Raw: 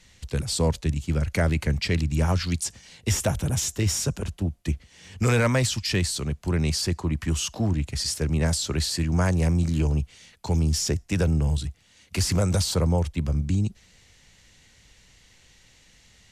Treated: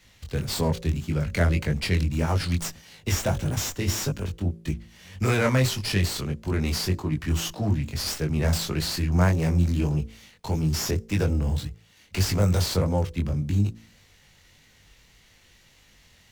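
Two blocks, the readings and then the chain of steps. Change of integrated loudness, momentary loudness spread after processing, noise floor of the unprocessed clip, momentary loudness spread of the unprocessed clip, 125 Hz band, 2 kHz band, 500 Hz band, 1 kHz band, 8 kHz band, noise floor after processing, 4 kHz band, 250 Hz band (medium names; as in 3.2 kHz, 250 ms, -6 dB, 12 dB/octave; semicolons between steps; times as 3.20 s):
-0.5 dB, 8 LU, -57 dBFS, 7 LU, 0.0 dB, +0.5 dB, -0.5 dB, +0.5 dB, -4.0 dB, -58 dBFS, -1.5 dB, -0.5 dB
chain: chorus 1.7 Hz, delay 19 ms, depth 4.6 ms; de-hum 55.59 Hz, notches 10; sliding maximum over 3 samples; trim +3 dB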